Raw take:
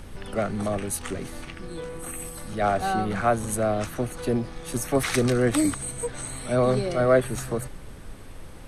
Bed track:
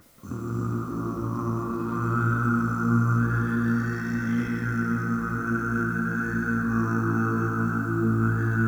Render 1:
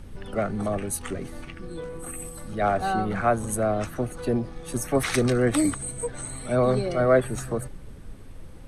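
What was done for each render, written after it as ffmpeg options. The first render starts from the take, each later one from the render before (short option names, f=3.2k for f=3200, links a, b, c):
-af "afftdn=nr=7:nf=-41"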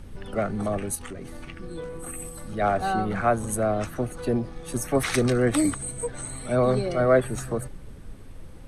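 -filter_complex "[0:a]asettb=1/sr,asplit=3[a][b][c];[a]atrim=end=0.954[d];[b]atrim=start=0.95:end=1.44,asetpts=PTS-STARTPTS,afade=t=in:d=0.004:c=qsin,afade=t=out:st=0.486:d=0.004:c=qsin,acompressor=threshold=-34dB:ratio=3:attack=3.2:release=140:knee=1:detection=peak[e];[c]atrim=start=1.436[f];[d][e]acrossfade=d=0.004:c1=hsin:c2=qsin[g];[g][f]acrossfade=d=0.004:c1=qsin:c2=hsin"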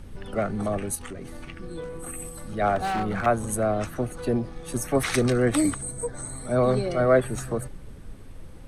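-filter_complex "[0:a]asettb=1/sr,asplit=3[a][b][c];[a]atrim=end=2.764[d];[b]atrim=start=2.76:end=3.26,asetpts=PTS-STARTPTS,afade=t=in:d=0.004:c=qsin,afade=t=out:st=0.496:d=0.004:c=qsin,aeval=exprs='0.0944*(abs(mod(val(0)/0.0944+3,4)-2)-1)':c=same[e];[c]atrim=start=3.256[f];[d][e]acrossfade=d=0.004:c1=hsin:c2=qsin[g];[g][f]acrossfade=d=0.004:c1=qsin:c2=hsin,asettb=1/sr,asplit=3[h][i][j];[h]atrim=end=5.814[k];[i]atrim=start=5.81:end=6.56,asetpts=PTS-STARTPTS,afade=t=in:d=0.004:c=qsin,afade=t=out:st=0.746:d=0.004:c=qsin,equalizer=f=2.8k:w=2.2:g=-14[l];[j]atrim=start=6.556[m];[k][l]acrossfade=d=0.004:c1=hsin:c2=qsin[n];[n][m]acrossfade=d=0.004:c1=qsin:c2=hsin"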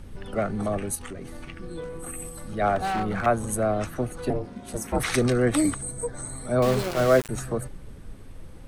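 -filter_complex "[0:a]asettb=1/sr,asplit=3[a][b][c];[a]atrim=end=4.304[d];[b]atrim=start=4.3:end=5,asetpts=PTS-STARTPTS,afade=t=in:d=0.004:c=qsin,afade=t=out:st=0.696:d=0.004:c=qsin,aeval=exprs='val(0)*sin(2*PI*220*n/s)':c=same[e];[c]atrim=start=4.996[f];[d][e]acrossfade=d=0.004:c1=hsin:c2=qsin[g];[g][f]acrossfade=d=0.004:c1=qsin:c2=hsin,asettb=1/sr,asplit=3[h][i][j];[h]atrim=end=6.624[k];[i]atrim=start=6.62:end=7.29,asetpts=PTS-STARTPTS,afade=t=in:d=0.004:c=qsin,afade=t=out:st=0.666:d=0.004:c=qsin,aeval=exprs='val(0)*gte(abs(val(0)),0.0473)':c=same[l];[j]atrim=start=7.286[m];[k][l]acrossfade=d=0.004:c1=hsin:c2=qsin[n];[n][m]acrossfade=d=0.004:c1=qsin:c2=hsin"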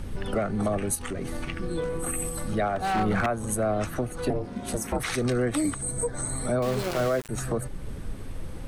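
-filter_complex "[0:a]asplit=2[a][b];[b]acompressor=threshold=-33dB:ratio=6,volume=2dB[c];[a][c]amix=inputs=2:normalize=0,alimiter=limit=-16dB:level=0:latency=1:release=398"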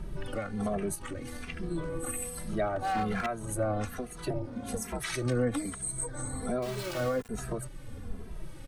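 -filter_complex "[0:a]acrossover=split=1500[a][b];[a]aeval=exprs='val(0)*(1-0.5/2+0.5/2*cos(2*PI*1.1*n/s))':c=same[c];[b]aeval=exprs='val(0)*(1-0.5/2-0.5/2*cos(2*PI*1.1*n/s))':c=same[d];[c][d]amix=inputs=2:normalize=0,asplit=2[e][f];[f]adelay=2.6,afreqshift=-1.2[g];[e][g]amix=inputs=2:normalize=1"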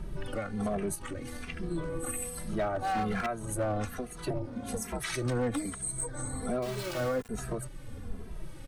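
-af "asoftclip=type=hard:threshold=-24.5dB"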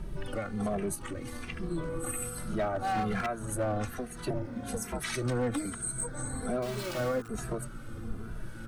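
-filter_complex "[1:a]volume=-22.5dB[a];[0:a][a]amix=inputs=2:normalize=0"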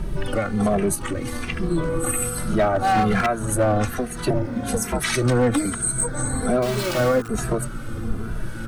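-af "volume=11.5dB"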